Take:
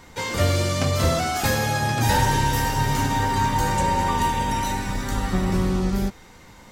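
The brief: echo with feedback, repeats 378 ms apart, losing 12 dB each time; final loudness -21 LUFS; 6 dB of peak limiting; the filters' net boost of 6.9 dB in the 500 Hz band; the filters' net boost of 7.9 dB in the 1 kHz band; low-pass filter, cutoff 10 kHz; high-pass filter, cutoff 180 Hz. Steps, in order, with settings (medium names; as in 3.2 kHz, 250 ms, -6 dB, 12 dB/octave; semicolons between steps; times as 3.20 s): high-pass 180 Hz; low-pass 10 kHz; peaking EQ 500 Hz +6.5 dB; peaking EQ 1 kHz +7 dB; peak limiter -10 dBFS; feedback delay 378 ms, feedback 25%, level -12 dB; trim -1.5 dB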